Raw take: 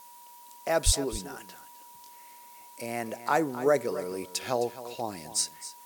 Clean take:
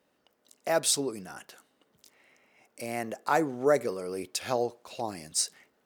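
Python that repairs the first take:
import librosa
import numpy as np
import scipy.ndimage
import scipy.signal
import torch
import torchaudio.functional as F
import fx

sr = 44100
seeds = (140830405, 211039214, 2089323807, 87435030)

y = fx.notch(x, sr, hz=960.0, q=30.0)
y = fx.fix_deplosive(y, sr, at_s=(0.85,))
y = fx.noise_reduce(y, sr, print_start_s=0.0, print_end_s=0.5, reduce_db=21.0)
y = fx.fix_echo_inverse(y, sr, delay_ms=262, level_db=-14.0)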